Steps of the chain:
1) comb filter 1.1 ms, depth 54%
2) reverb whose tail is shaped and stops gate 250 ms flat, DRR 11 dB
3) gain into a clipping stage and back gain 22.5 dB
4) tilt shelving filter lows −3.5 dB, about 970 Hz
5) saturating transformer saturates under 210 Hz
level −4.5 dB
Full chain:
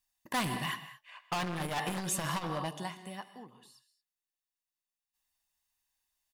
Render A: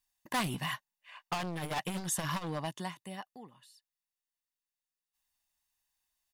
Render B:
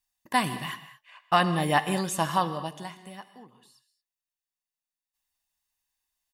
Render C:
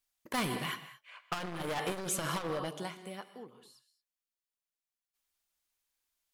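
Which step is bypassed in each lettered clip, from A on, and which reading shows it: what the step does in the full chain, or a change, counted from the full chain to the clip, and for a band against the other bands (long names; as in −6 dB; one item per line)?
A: 2, change in momentary loudness spread +2 LU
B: 3, distortion level −5 dB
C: 1, 500 Hz band +4.0 dB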